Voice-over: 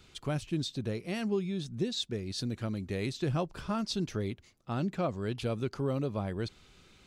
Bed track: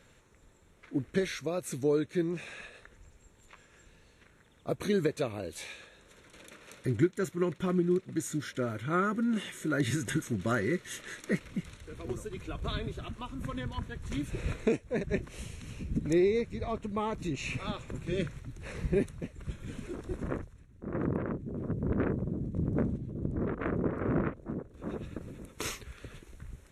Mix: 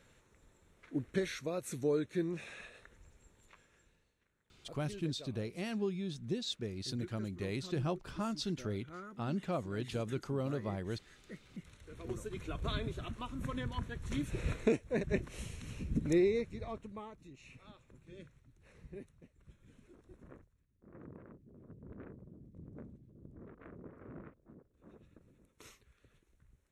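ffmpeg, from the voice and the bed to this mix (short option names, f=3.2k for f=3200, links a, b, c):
-filter_complex "[0:a]adelay=4500,volume=-4.5dB[a];[1:a]volume=13dB,afade=t=out:st=3.29:d=0.86:silence=0.177828,afade=t=in:st=11.4:d=0.96:silence=0.133352,afade=t=out:st=16.05:d=1.12:silence=0.11885[b];[a][b]amix=inputs=2:normalize=0"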